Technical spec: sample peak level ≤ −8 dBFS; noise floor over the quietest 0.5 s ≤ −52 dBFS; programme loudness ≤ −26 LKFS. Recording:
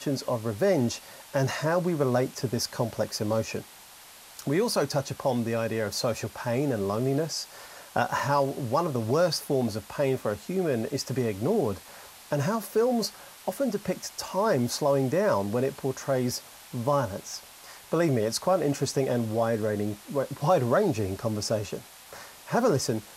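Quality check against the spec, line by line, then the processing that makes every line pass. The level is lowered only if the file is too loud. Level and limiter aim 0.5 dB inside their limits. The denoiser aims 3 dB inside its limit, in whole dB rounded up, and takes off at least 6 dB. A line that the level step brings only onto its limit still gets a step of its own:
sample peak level −10.0 dBFS: in spec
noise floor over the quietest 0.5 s −49 dBFS: out of spec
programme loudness −28.0 LKFS: in spec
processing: broadband denoise 6 dB, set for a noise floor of −49 dBFS

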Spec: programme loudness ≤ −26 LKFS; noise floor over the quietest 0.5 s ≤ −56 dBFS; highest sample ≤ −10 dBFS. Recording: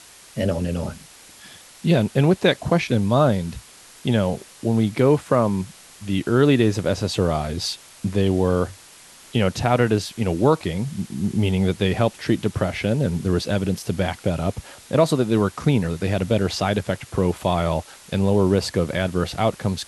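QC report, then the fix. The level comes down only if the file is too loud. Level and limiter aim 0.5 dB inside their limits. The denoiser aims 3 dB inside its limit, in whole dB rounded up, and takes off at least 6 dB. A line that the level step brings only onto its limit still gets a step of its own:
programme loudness −22.0 LKFS: out of spec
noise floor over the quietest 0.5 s −47 dBFS: out of spec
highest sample −4.5 dBFS: out of spec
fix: broadband denoise 8 dB, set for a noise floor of −47 dBFS
level −4.5 dB
brickwall limiter −10.5 dBFS

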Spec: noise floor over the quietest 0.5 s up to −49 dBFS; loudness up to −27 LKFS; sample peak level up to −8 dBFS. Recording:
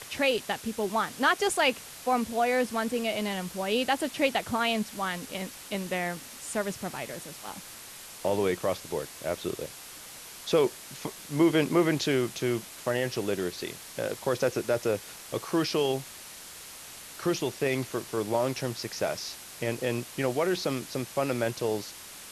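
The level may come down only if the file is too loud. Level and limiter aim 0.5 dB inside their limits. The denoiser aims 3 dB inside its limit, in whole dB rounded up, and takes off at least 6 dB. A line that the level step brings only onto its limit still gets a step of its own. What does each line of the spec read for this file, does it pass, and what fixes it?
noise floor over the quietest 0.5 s −45 dBFS: out of spec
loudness −29.5 LKFS: in spec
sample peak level −12.0 dBFS: in spec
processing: broadband denoise 7 dB, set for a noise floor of −45 dBFS

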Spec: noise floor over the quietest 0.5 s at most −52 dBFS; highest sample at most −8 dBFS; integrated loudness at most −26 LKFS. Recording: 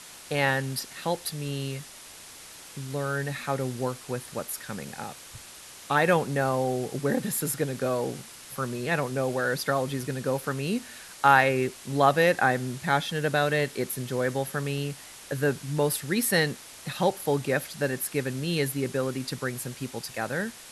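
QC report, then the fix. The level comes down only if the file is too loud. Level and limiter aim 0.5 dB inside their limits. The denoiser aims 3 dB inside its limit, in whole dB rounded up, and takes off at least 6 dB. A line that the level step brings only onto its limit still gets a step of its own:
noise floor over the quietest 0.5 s −46 dBFS: out of spec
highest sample −6.0 dBFS: out of spec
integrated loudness −27.5 LKFS: in spec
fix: broadband denoise 9 dB, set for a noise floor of −46 dBFS
brickwall limiter −8.5 dBFS

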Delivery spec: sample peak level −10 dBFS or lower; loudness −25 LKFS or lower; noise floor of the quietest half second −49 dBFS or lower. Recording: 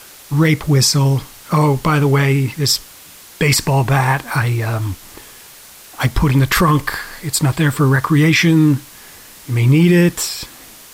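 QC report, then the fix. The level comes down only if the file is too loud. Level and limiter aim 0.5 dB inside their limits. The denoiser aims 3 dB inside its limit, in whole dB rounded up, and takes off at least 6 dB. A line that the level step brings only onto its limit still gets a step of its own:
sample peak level −4.0 dBFS: out of spec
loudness −15.5 LKFS: out of spec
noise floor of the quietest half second −40 dBFS: out of spec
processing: level −10 dB

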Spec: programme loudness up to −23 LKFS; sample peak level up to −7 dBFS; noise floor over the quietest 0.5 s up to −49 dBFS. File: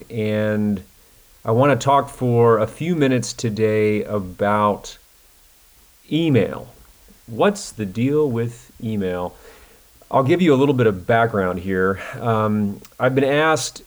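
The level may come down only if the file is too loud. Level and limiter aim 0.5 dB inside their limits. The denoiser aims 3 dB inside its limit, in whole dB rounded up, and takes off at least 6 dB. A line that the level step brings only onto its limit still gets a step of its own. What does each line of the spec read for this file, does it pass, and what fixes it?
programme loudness −19.5 LKFS: out of spec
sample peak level −5.0 dBFS: out of spec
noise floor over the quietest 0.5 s −52 dBFS: in spec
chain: level −4 dB

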